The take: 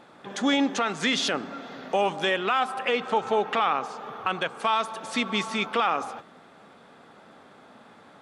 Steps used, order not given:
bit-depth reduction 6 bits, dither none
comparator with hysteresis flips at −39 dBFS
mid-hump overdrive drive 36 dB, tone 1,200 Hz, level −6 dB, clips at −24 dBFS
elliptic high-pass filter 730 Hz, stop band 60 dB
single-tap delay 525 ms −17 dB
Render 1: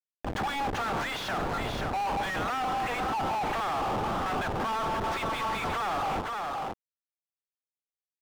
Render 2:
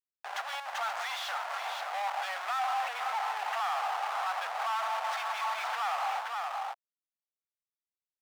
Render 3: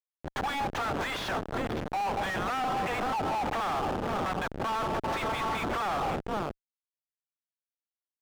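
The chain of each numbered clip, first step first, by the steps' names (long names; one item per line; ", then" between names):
elliptic high-pass filter, then comparator with hysteresis, then bit-depth reduction, then single-tap delay, then mid-hump overdrive
comparator with hysteresis, then bit-depth reduction, then single-tap delay, then mid-hump overdrive, then elliptic high-pass filter
elliptic high-pass filter, then bit-depth reduction, then single-tap delay, then comparator with hysteresis, then mid-hump overdrive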